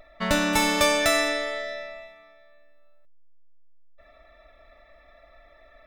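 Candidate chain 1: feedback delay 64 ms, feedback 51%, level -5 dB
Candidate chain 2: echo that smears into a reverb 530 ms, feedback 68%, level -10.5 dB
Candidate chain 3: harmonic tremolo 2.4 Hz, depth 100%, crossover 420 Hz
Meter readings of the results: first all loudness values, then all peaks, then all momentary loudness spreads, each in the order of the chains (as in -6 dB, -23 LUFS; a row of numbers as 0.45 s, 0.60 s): -22.0 LUFS, -24.0 LUFS, -27.5 LUFS; -7.5 dBFS, -7.5 dBFS, -8.0 dBFS; 17 LU, 22 LU, 17 LU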